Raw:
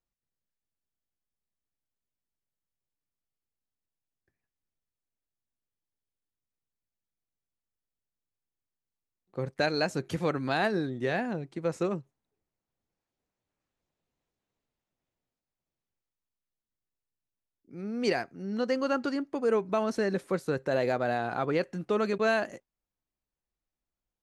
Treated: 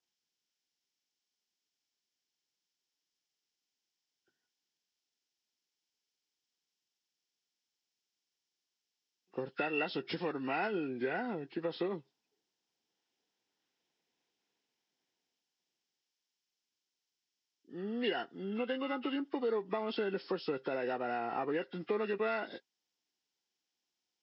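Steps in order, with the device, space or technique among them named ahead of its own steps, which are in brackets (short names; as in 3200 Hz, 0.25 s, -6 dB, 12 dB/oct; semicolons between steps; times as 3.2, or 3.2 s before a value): hearing aid with frequency lowering (nonlinear frequency compression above 1100 Hz 1.5:1; compressor 4:1, threshold -32 dBFS, peak gain reduction 9 dB; speaker cabinet 310–6700 Hz, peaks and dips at 590 Hz -10 dB, 1200 Hz -7 dB, 3100 Hz +5 dB, 5300 Hz +8 dB); gain +4 dB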